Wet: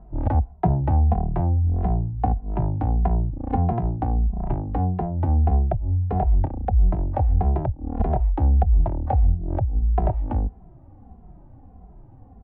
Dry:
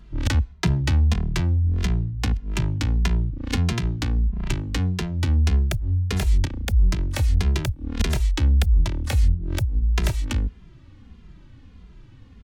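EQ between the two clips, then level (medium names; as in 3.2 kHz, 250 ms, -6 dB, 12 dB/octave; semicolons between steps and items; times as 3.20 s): resonant low-pass 750 Hz, resonance Q 8.4; distance through air 230 m; 0.0 dB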